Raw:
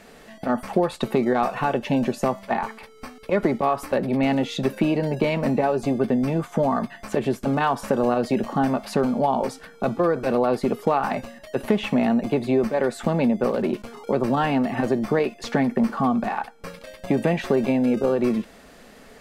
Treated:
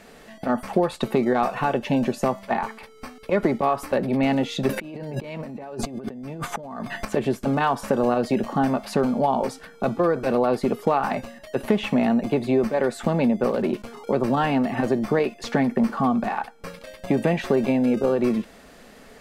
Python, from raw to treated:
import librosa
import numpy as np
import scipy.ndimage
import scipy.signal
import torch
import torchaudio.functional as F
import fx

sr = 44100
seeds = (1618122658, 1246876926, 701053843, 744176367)

y = fx.over_compress(x, sr, threshold_db=-33.0, ratio=-1.0, at=(4.69, 7.05))